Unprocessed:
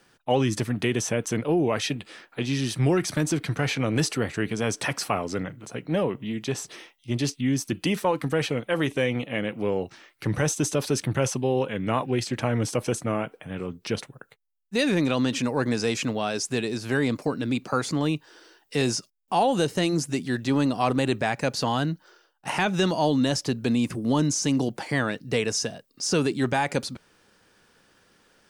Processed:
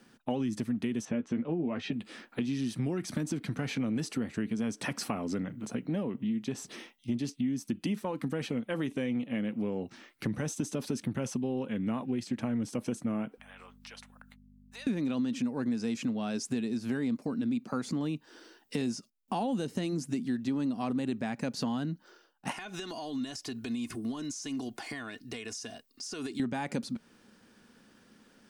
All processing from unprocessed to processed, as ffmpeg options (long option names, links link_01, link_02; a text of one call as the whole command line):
ffmpeg -i in.wav -filter_complex "[0:a]asettb=1/sr,asplit=3[link_01][link_02][link_03];[link_01]atrim=end=1.054[link_04];[link_02]atrim=start=1.05:end=1.93,asetpts=PTS-STARTPTS,afade=type=in:duration=0.004:curve=qsin,afade=type=out:start_time=0.876:duration=0.004:curve=qsin,lowpass=3000,asplit=2[link_05][link_06];[link_06]adelay=12,volume=-6.5dB[link_07];[link_05][link_07]amix=inputs=2:normalize=0,atrim=end_sample=38808[link_08];[link_03]atrim=start=1.926[link_09];[link_04][link_08]acrossfade=duration=0.004:curve1=hsin:curve2=qsin[link_10];[link_10][link_09]acrossfade=duration=0.004:curve1=qsin:curve2=hsin,asettb=1/sr,asplit=3[link_11][link_12][link_13];[link_11]atrim=end=13.384[link_14];[link_12]atrim=start=13.38:end=14.87,asetpts=PTS-STARTPTS,afade=type=in:duration=0.004:curve=qsin,afade=type=out:start_time=1.486:duration=0.004:curve=qsin,highpass=frequency=760:width=0.5412,highpass=frequency=760:width=1.3066,acompressor=threshold=-47dB:ratio=2.5:attack=3.2:release=140:knee=1:detection=peak,aeval=exprs='val(0)+0.00141*(sin(2*PI*50*n/s)+sin(2*PI*2*50*n/s)/2+sin(2*PI*3*50*n/s)/3+sin(2*PI*4*50*n/s)/4+sin(2*PI*5*50*n/s)/5)':channel_layout=same[link_15];[link_13]atrim=start=14.866[link_16];[link_14][link_15]acrossfade=duration=0.004:curve1=hsin:curve2=qsin[link_17];[link_17][link_16]acrossfade=duration=0.004:curve1=qsin:curve2=hsin,asettb=1/sr,asplit=3[link_18][link_19][link_20];[link_18]atrim=end=22.524[link_21];[link_19]atrim=start=22.52:end=26.4,asetpts=PTS-STARTPTS,afade=type=in:duration=0.004:curve=qsin,afade=type=out:start_time=3.876:duration=0.004:curve=qsin,equalizer=frequency=220:width=0.43:gain=-12.5,aecho=1:1:2.8:0.58,atrim=end_sample=171108,acompressor=threshold=-34dB:ratio=12:attack=3.2:release=140:knee=1:detection=peak[link_22];[link_20]atrim=start=26.396[link_23];[link_21][link_22]acrossfade=duration=0.004:curve1=hsin:curve2=qsin[link_24];[link_24][link_23]acrossfade=duration=0.004:curve1=qsin:curve2=hsin,equalizer=frequency=230:width_type=o:width=0.66:gain=14.5,acompressor=threshold=-28dB:ratio=4,volume=-3dB" out.wav